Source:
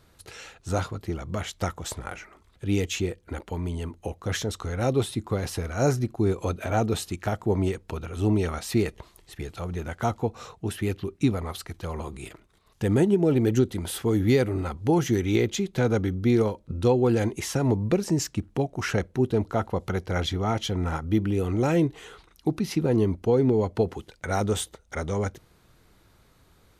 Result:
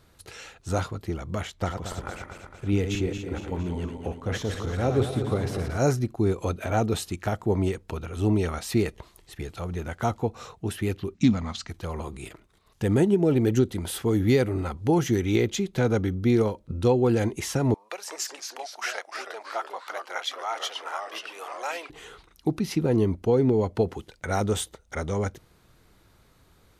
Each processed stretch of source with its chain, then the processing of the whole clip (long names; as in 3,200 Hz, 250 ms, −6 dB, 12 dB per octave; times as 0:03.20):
0:01.47–0:05.78: feedback delay that plays each chunk backwards 114 ms, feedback 73%, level −7 dB + high-shelf EQ 3,700 Hz −9.5 dB
0:11.14–0:11.69: phase distortion by the signal itself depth 0.069 ms + drawn EQ curve 140 Hz 0 dB, 230 Hz +10 dB, 380 Hz −11 dB, 640 Hz −3 dB, 6,800 Hz +6 dB, 12,000 Hz −24 dB
0:17.74–0:21.90: high-pass filter 710 Hz 24 dB per octave + delay with pitch and tempo change per echo 172 ms, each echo −2 semitones, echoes 3, each echo −6 dB
whole clip: no processing